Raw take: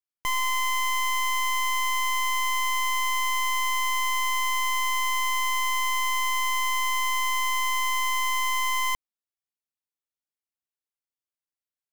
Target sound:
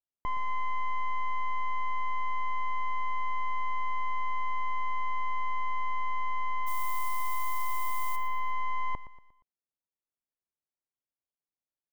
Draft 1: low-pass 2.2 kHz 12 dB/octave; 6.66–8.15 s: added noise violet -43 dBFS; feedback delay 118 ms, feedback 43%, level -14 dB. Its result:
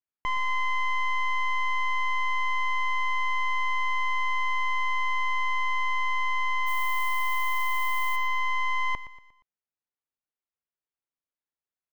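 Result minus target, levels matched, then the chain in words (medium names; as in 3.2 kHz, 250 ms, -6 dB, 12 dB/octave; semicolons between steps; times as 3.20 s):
2 kHz band +5.0 dB
low-pass 920 Hz 12 dB/octave; 6.66–8.15 s: added noise violet -43 dBFS; feedback delay 118 ms, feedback 43%, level -14 dB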